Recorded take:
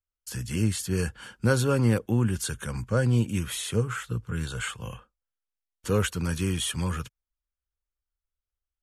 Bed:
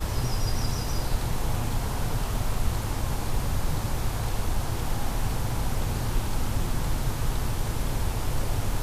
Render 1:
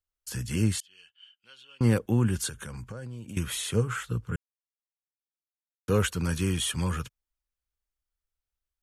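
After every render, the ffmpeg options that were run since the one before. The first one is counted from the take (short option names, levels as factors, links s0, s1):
-filter_complex "[0:a]asettb=1/sr,asplit=3[s0][s1][s2];[s0]atrim=end=0.804[s3];[s1]atrim=start=0.8:end=1.81,asetpts=PTS-STARTPTS,afade=t=in:d=0.004:c=qsin,afade=t=out:st=1.006:d=0.004:c=qsin,bandpass=f=3000:t=q:w=15[s4];[s2]atrim=start=1.806[s5];[s3][s4]acrossfade=d=0.004:c1=hsin:c2=qsin[s6];[s6][s5]acrossfade=d=0.004:c1=qsin:c2=hsin,asettb=1/sr,asplit=3[s7][s8][s9];[s7]atrim=end=2.484[s10];[s8]atrim=start=2.48:end=3.37,asetpts=PTS-STARTPTS,afade=t=in:d=0.004:c=qsin,afade=t=out:st=0.886:d=0.004:c=qsin,acompressor=threshold=0.0178:ratio=16:attack=3.2:release=140:knee=1:detection=peak[s11];[s9]atrim=start=3.366[s12];[s10][s11]acrossfade=d=0.004:c1=hsin:c2=qsin[s13];[s13][s12]acrossfade=d=0.004:c1=qsin:c2=hsin,asplit=3[s14][s15][s16];[s14]atrim=end=4.36,asetpts=PTS-STARTPTS,afade=t=out:st=4.356:d=0.004:c=hsin[s17];[s15]atrim=start=4.36:end=5.88,asetpts=PTS-STARTPTS,volume=0[s18];[s16]atrim=start=5.88,asetpts=PTS-STARTPTS,afade=t=in:d=0.004:c=hsin[s19];[s17][s18][s19]concat=n=3:v=0:a=1"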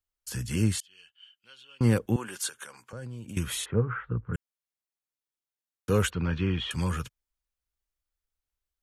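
-filter_complex "[0:a]asettb=1/sr,asplit=3[s0][s1][s2];[s0]atrim=end=2.164[s3];[s1]atrim=start=2.16:end=2.93,asetpts=PTS-STARTPTS,afade=t=in:d=0.004:c=qsin,afade=t=out:st=0.766:d=0.004:c=qsin,highpass=580[s4];[s2]atrim=start=2.926[s5];[s3][s4]acrossfade=d=0.004:c1=hsin:c2=qsin[s6];[s6][s5]acrossfade=d=0.004:c1=qsin:c2=hsin,asplit=3[s7][s8][s9];[s7]afade=t=out:st=3.64:d=0.02[s10];[s8]lowpass=f=1800:w=0.5412,lowpass=f=1800:w=1.3066,afade=t=in:st=3.64:d=0.02,afade=t=out:st=4.33:d=0.02[s11];[s9]afade=t=in:st=4.33:d=0.02[s12];[s10][s11][s12]amix=inputs=3:normalize=0,asettb=1/sr,asplit=3[s13][s14][s15];[s13]atrim=end=6.104[s16];[s14]atrim=start=6.1:end=6.71,asetpts=PTS-STARTPTS,afade=t=in:d=0.004:c=qsin,afade=t=out:st=0.606:d=0.004:c=qsin,lowpass=f=3400:w=0.5412,lowpass=f=3400:w=1.3066[s17];[s15]atrim=start=6.706[s18];[s16][s17]acrossfade=d=0.004:c1=hsin:c2=qsin[s19];[s19][s18]acrossfade=d=0.004:c1=qsin:c2=hsin"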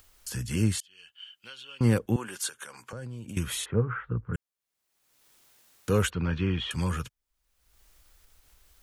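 -af "acompressor=mode=upward:threshold=0.0158:ratio=2.5"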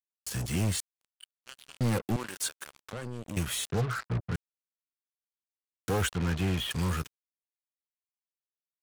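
-af "volume=13.3,asoftclip=hard,volume=0.075,acrusher=bits=5:mix=0:aa=0.5"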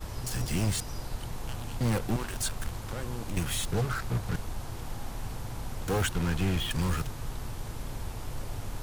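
-filter_complex "[1:a]volume=0.335[s0];[0:a][s0]amix=inputs=2:normalize=0"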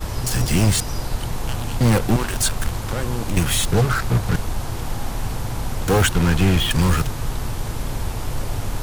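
-af "volume=3.76"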